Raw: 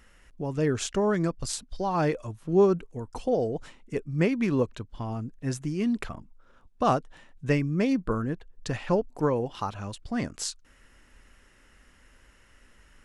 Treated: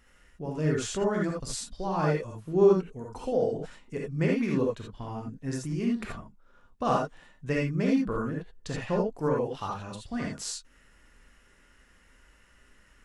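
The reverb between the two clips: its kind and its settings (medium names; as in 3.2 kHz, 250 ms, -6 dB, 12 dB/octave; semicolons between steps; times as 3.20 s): gated-style reverb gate 100 ms rising, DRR -2 dB; trim -5.5 dB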